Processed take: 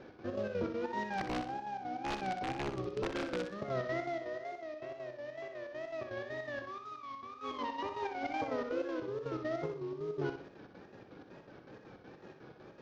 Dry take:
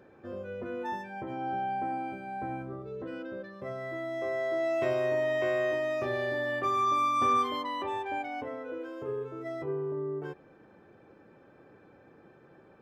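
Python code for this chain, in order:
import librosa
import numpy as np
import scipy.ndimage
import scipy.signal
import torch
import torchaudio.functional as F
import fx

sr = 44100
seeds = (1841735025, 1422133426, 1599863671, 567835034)

y = fx.cvsd(x, sr, bps=32000)
y = fx.over_compress(y, sr, threshold_db=-38.0, ratio=-1.0)
y = fx.chopper(y, sr, hz=5.4, depth_pct=65, duty_pct=60)
y = fx.wow_flutter(y, sr, seeds[0], rate_hz=2.1, depth_cents=120.0)
y = fx.overflow_wrap(y, sr, gain_db=28.0, at=(1.03, 3.54))
y = fx.air_absorb(y, sr, metres=130.0)
y = fx.echo_feedback(y, sr, ms=62, feedback_pct=37, wet_db=-7.5)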